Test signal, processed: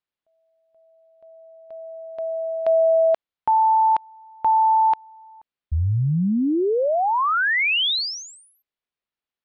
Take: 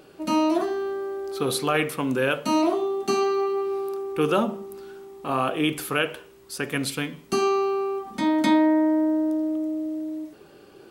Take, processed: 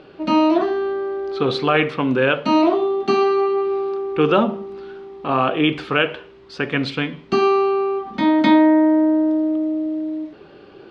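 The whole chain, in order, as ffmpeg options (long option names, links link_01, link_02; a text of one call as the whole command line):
ffmpeg -i in.wav -af "lowpass=frequency=4100:width=0.5412,lowpass=frequency=4100:width=1.3066,volume=6dB" out.wav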